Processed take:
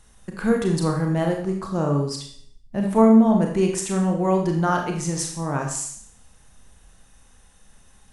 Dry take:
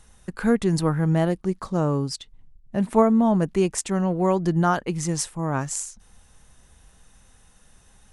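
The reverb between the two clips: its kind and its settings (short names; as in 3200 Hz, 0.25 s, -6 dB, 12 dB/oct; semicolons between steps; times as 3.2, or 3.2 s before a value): Schroeder reverb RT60 0.59 s, combs from 28 ms, DRR 1.5 dB; gain -1.5 dB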